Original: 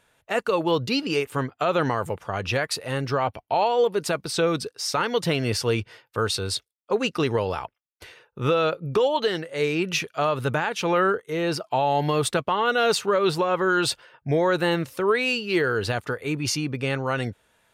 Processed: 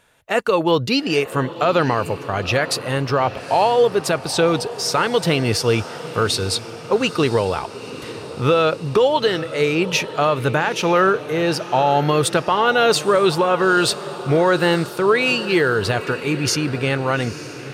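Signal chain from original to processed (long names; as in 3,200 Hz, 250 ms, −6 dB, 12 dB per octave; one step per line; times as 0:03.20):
feedback delay with all-pass diffusion 889 ms, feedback 59%, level −14.5 dB
level +5.5 dB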